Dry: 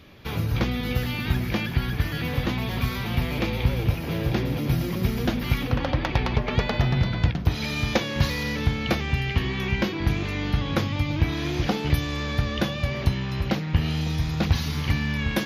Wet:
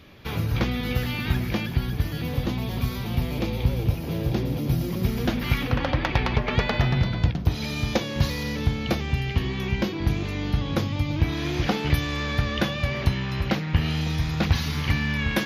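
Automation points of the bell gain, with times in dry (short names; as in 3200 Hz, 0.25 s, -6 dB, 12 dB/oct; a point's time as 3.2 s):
bell 1800 Hz 1.8 oct
1.35 s +0.5 dB
1.92 s -7.5 dB
4.81 s -7.5 dB
5.47 s +3 dB
6.85 s +3 dB
7.28 s -4.5 dB
11.02 s -4.5 dB
11.71 s +3 dB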